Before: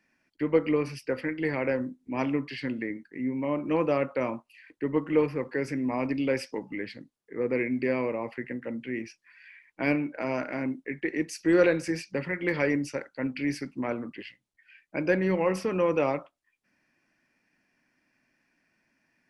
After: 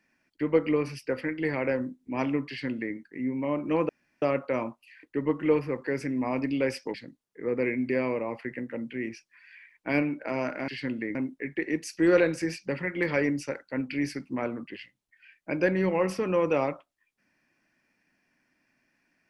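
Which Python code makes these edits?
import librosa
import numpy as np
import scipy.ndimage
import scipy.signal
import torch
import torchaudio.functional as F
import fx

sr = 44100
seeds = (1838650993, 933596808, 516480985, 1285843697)

y = fx.edit(x, sr, fx.duplicate(start_s=2.48, length_s=0.47, to_s=10.61),
    fx.insert_room_tone(at_s=3.89, length_s=0.33),
    fx.cut(start_s=6.61, length_s=0.26), tone=tone)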